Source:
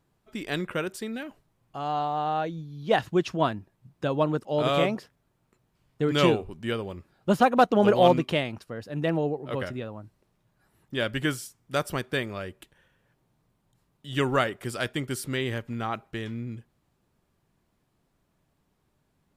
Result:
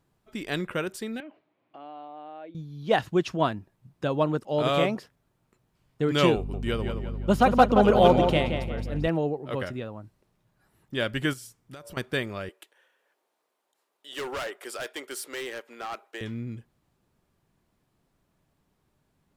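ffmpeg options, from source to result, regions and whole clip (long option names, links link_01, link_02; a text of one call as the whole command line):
ffmpeg -i in.wav -filter_complex "[0:a]asettb=1/sr,asplit=3[link_01][link_02][link_03];[link_01]atrim=end=1.204[link_04];[link_02]atrim=start=1.2:end=2.55,asetpts=PTS-STARTPTS,afade=type=in:duration=0.004:curve=qsin,afade=type=out:start_time=1.346:duration=0.004:curve=qsin,acompressor=threshold=-49dB:ratio=3:attack=3.2:release=140:knee=1:detection=peak,highpass=290,equalizer=frequency=300:width_type=q:width=4:gain=10,equalizer=frequency=620:width_type=q:width=4:gain=7,equalizer=frequency=2300:width_type=q:width=4:gain=6,lowpass=frequency=3700:width=0.5412,lowpass=frequency=3700:width=1.3066[link_05];[link_03]atrim=start=2.546[link_06];[link_04][link_05]acrossfade=duration=0.004:curve1=hsin:curve2=qsin[link_07];[link_07][link_06]acrossfade=duration=0.004:curve1=qsin:curve2=hsin,asettb=1/sr,asplit=3[link_08][link_09][link_10];[link_08]atrim=end=6.364[link_11];[link_09]atrim=start=6.36:end=9.08,asetpts=PTS-STARTPTS,afade=type=in:duration=0.004:curve=qsin,afade=type=out:start_time=2.716:duration=0.004:curve=qsin,bandreject=frequency=1700:width=15,asplit=2[link_12][link_13];[link_13]adelay=174,lowpass=frequency=3400:poles=1,volume=-6dB,asplit=2[link_14][link_15];[link_15]adelay=174,lowpass=frequency=3400:poles=1,volume=0.43,asplit=2[link_16][link_17];[link_17]adelay=174,lowpass=frequency=3400:poles=1,volume=0.43,asplit=2[link_18][link_19];[link_19]adelay=174,lowpass=frequency=3400:poles=1,volume=0.43,asplit=2[link_20][link_21];[link_21]adelay=174,lowpass=frequency=3400:poles=1,volume=0.43[link_22];[link_12][link_14][link_16][link_18][link_20][link_22]amix=inputs=6:normalize=0,atrim=end_sample=119952,aeval=exprs='val(0)+0.0282*(sin(2*PI*50*n/s)+sin(2*PI*2*50*n/s)/2+sin(2*PI*3*50*n/s)/3+sin(2*PI*4*50*n/s)/4+sin(2*PI*5*50*n/s)/5)':channel_layout=same[link_23];[link_10]atrim=start=9.076[link_24];[link_11][link_23]acrossfade=duration=0.004:curve1=hsin:curve2=qsin[link_25];[link_25][link_24]acrossfade=duration=0.004:curve1=qsin:curve2=hsin,asettb=1/sr,asplit=3[link_26][link_27][link_28];[link_26]atrim=end=11.334[link_29];[link_27]atrim=start=11.33:end=11.97,asetpts=PTS-STARTPTS,afade=type=in:duration=0.004:curve=qsin,afade=type=out:start_time=0.636:duration=0.004:curve=qsin,bandreject=frequency=115:width_type=h:width=4,bandreject=frequency=230:width_type=h:width=4,bandreject=frequency=345:width_type=h:width=4,bandreject=frequency=460:width_type=h:width=4,bandreject=frequency=575:width_type=h:width=4,bandreject=frequency=690:width_type=h:width=4,bandreject=frequency=805:width_type=h:width=4,bandreject=frequency=920:width_type=h:width=4,bandreject=frequency=1035:width_type=h:width=4,acompressor=threshold=-39dB:ratio=20:attack=3.2:release=140:knee=1:detection=peak[link_30];[link_28]atrim=start=11.966[link_31];[link_29][link_30]acrossfade=duration=0.004:curve1=hsin:curve2=qsin[link_32];[link_32][link_31]acrossfade=duration=0.004:curve1=qsin:curve2=hsin,asettb=1/sr,asplit=3[link_33][link_34][link_35];[link_33]atrim=end=12.494[link_36];[link_34]atrim=start=12.49:end=16.21,asetpts=PTS-STARTPTS,afade=type=in:duration=0.004:curve=qsin,afade=type=out:start_time=3.716:duration=0.004:curve=qsin,highpass=frequency=400:width=0.5412,highpass=frequency=400:width=1.3066,volume=30dB,asoftclip=hard,volume=-30dB[link_37];[link_35]atrim=start=16.206[link_38];[link_36][link_37]acrossfade=duration=0.004:curve1=hsin:curve2=qsin[link_39];[link_39][link_38]acrossfade=duration=0.004:curve1=qsin:curve2=hsin" out.wav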